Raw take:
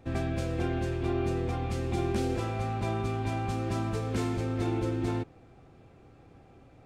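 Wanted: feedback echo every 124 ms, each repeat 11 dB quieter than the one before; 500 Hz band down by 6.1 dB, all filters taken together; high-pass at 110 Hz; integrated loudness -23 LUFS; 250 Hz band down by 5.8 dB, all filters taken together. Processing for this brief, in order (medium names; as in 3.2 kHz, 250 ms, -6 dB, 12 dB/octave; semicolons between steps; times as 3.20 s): high-pass 110 Hz; peaking EQ 250 Hz -5 dB; peaking EQ 500 Hz -6.5 dB; feedback delay 124 ms, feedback 28%, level -11 dB; trim +12.5 dB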